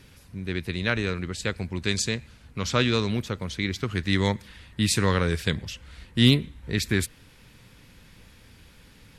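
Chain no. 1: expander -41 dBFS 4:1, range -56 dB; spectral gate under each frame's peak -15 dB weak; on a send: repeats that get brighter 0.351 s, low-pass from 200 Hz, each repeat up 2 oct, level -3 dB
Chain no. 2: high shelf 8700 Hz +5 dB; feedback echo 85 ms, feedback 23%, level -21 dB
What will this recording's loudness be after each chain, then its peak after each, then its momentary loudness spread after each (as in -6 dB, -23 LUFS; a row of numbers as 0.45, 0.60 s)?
-33.5, -26.0 LUFS; -9.0, -4.0 dBFS; 11, 12 LU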